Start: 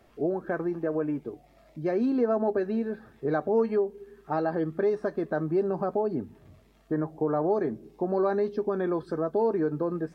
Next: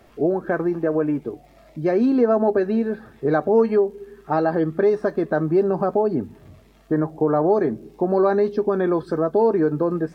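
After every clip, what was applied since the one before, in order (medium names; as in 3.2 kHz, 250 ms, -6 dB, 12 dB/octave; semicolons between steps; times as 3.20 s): crackle 56 per s -58 dBFS; trim +7.5 dB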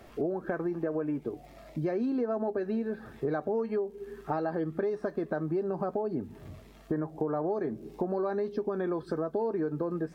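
compression 4:1, threshold -30 dBFS, peak gain reduction 15 dB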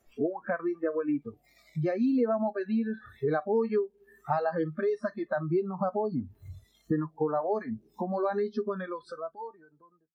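fade out at the end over 1.46 s; spectral noise reduction 24 dB; trim +4.5 dB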